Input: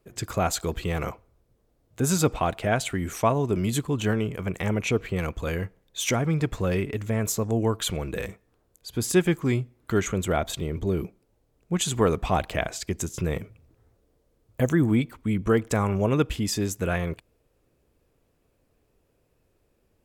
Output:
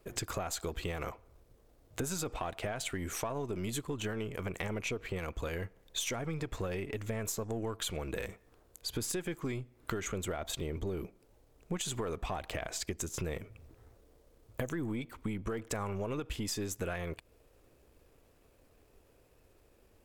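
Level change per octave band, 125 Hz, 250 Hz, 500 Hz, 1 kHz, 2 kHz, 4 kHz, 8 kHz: -13.0, -13.0, -11.5, -12.0, -9.5, -7.0, -7.5 dB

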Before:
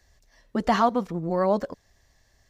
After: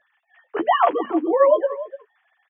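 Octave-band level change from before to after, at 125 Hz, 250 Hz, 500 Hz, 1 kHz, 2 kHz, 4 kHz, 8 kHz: under -25 dB, +1.0 dB, +7.5 dB, +5.0 dB, +4.5 dB, +2.0 dB, n/a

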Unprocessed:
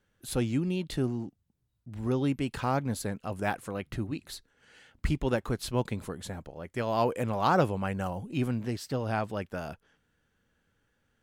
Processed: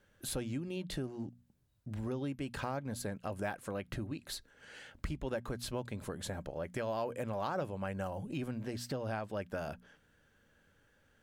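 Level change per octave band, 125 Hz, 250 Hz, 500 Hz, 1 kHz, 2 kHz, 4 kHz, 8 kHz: -9.0, -8.5, -6.5, -10.0, -7.0, -4.5, -3.0 dB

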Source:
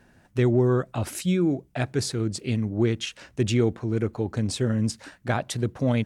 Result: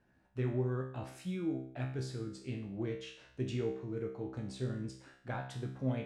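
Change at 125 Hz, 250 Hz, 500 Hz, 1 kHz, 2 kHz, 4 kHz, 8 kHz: -12.5, -14.0, -13.0, -13.0, -14.0, -17.0, -21.5 dB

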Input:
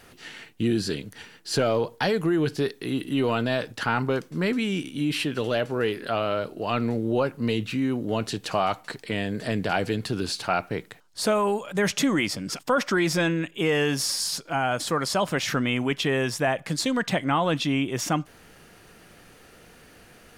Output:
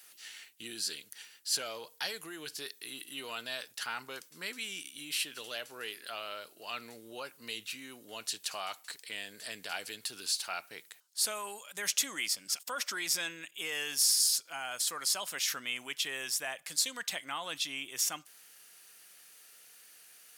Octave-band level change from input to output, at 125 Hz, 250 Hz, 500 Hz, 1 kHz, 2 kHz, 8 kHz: -32.0, -26.5, -21.0, -15.0, -9.0, +2.0 dB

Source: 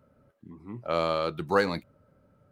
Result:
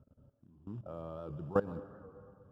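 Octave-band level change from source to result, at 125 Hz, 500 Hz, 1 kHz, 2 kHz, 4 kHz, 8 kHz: -4.5 dB, -9.5 dB, -14.5 dB, -19.0 dB, under -30 dB, n/a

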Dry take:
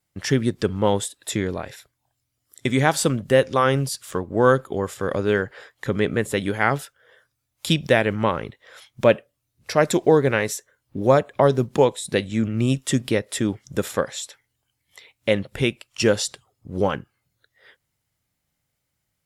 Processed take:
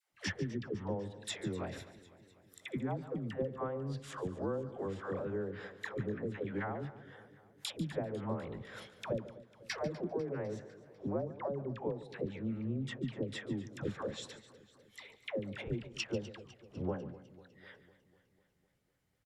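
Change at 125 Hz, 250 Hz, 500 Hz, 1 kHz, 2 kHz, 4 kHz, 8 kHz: -15.5, -15.5, -18.5, -20.5, -19.5, -17.0, -21.5 dB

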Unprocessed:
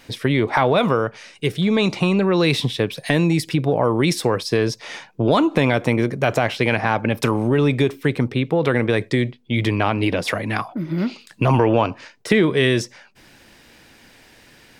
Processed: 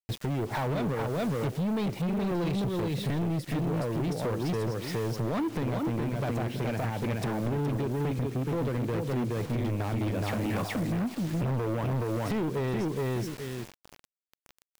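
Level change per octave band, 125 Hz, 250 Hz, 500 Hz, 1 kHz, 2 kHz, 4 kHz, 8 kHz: -7.0, -9.5, -12.0, -12.5, -16.0, -16.0, -10.5 dB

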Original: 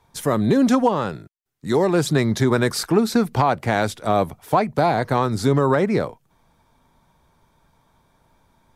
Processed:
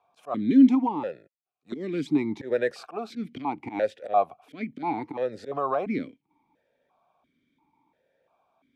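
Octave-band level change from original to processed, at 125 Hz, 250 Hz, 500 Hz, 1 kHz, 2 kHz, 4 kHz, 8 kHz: -19.5 dB, -3.5 dB, -9.0 dB, -8.0 dB, -11.5 dB, -17.0 dB, under -20 dB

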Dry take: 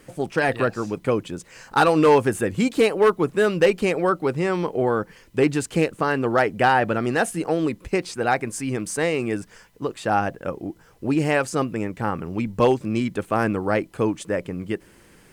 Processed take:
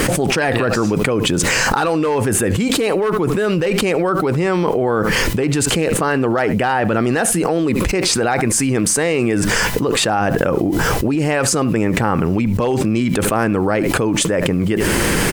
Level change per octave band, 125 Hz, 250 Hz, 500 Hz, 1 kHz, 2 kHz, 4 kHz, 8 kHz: +9.0, +7.0, +4.0, +3.0, +6.5, +13.0, +16.5 dB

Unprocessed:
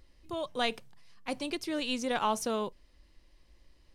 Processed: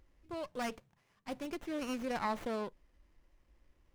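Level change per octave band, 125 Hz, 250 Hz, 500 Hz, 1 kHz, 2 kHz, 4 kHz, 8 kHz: -3.0, -4.0, -5.5, -6.0, -6.5, -13.5, -11.5 dB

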